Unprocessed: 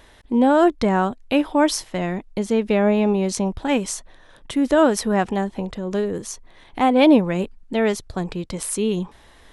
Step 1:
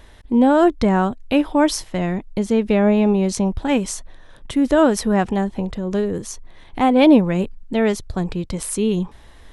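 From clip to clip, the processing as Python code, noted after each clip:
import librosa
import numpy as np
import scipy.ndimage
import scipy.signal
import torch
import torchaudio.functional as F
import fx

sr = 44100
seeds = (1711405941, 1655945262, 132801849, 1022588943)

y = fx.low_shelf(x, sr, hz=170.0, db=8.5)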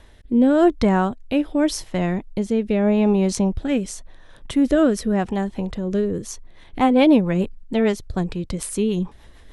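y = fx.rotary_switch(x, sr, hz=0.85, then_hz=6.7, switch_at_s=6.02)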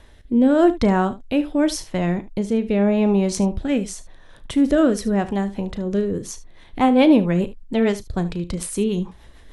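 y = fx.room_early_taps(x, sr, ms=(35, 75), db=(-14.5, -16.5))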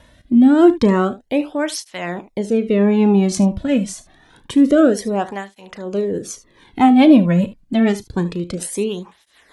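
y = fx.flanger_cancel(x, sr, hz=0.27, depth_ms=2.6)
y = y * 10.0 ** (5.5 / 20.0)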